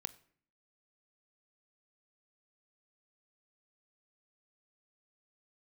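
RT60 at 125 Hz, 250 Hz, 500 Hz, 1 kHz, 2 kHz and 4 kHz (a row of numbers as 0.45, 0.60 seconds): 0.70, 0.80, 0.55, 0.50, 0.55, 0.40 seconds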